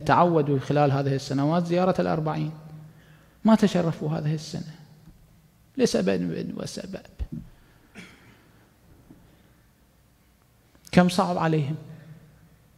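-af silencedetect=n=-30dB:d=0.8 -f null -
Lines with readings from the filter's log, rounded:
silence_start: 2.50
silence_end: 3.45 | silence_duration: 0.95
silence_start: 4.62
silence_end: 5.78 | silence_duration: 1.16
silence_start: 8.00
silence_end: 10.87 | silence_duration: 2.88
silence_start: 11.76
silence_end: 12.78 | silence_duration: 1.02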